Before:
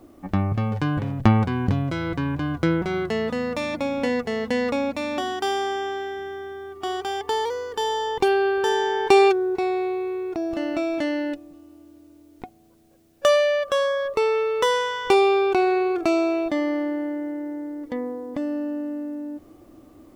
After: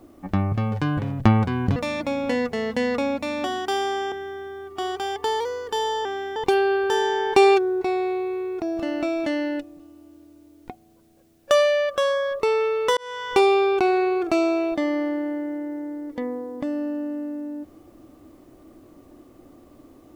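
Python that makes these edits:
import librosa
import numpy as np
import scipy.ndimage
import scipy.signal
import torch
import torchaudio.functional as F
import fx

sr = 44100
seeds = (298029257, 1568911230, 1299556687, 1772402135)

y = fx.edit(x, sr, fx.cut(start_s=1.76, length_s=1.74),
    fx.move(start_s=5.86, length_s=0.31, to_s=8.1),
    fx.fade_in_span(start_s=14.71, length_s=0.35), tone=tone)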